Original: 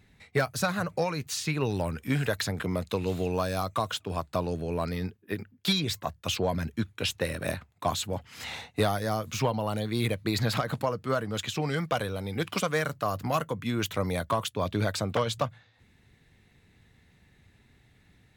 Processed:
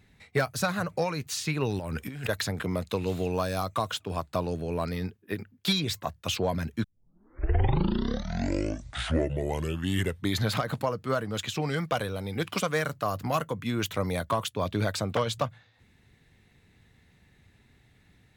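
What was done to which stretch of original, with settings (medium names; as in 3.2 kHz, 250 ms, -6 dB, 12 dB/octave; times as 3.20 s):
1.79–2.29 s: compressor with a negative ratio -35 dBFS
6.84 s: tape start 3.80 s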